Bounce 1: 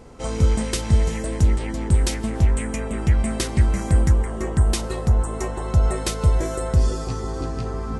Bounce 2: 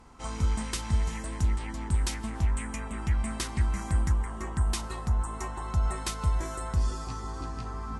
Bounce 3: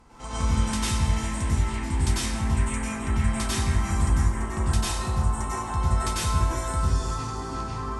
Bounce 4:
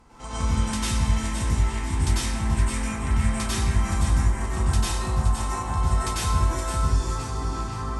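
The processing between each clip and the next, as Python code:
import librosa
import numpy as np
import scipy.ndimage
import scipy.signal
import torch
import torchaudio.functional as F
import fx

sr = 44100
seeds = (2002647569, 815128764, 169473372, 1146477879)

y1 = fx.graphic_eq_10(x, sr, hz=(125, 500, 1000), db=(-5, -12, 7))
y1 = fx.cheby_harmonics(y1, sr, harmonics=(3, 5), levels_db=(-27, -30), full_scale_db=-7.5)
y1 = F.gain(torch.from_numpy(y1), -7.0).numpy()
y2 = fx.rev_plate(y1, sr, seeds[0], rt60_s=0.74, hf_ratio=0.95, predelay_ms=85, drr_db=-8.0)
y2 = F.gain(torch.from_numpy(y2), -1.5).numpy()
y3 = fx.echo_feedback(y2, sr, ms=520, feedback_pct=40, wet_db=-9)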